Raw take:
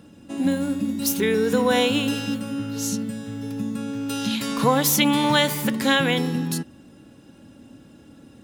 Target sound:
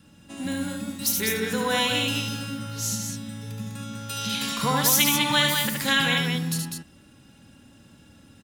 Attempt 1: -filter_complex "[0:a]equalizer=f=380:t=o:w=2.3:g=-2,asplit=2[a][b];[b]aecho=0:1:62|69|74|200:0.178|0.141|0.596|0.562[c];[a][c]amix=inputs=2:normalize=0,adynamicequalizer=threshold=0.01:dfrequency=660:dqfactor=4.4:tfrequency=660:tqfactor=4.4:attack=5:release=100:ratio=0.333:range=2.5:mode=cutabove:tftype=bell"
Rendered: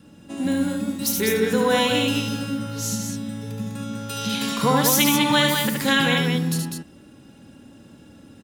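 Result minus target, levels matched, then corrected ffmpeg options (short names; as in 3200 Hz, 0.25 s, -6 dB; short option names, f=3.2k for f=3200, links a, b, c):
500 Hz band +5.5 dB
-filter_complex "[0:a]equalizer=f=380:t=o:w=2.3:g=-11,asplit=2[a][b];[b]aecho=0:1:62|69|74|200:0.178|0.141|0.596|0.562[c];[a][c]amix=inputs=2:normalize=0,adynamicequalizer=threshold=0.01:dfrequency=660:dqfactor=4.4:tfrequency=660:tqfactor=4.4:attack=5:release=100:ratio=0.333:range=2.5:mode=cutabove:tftype=bell"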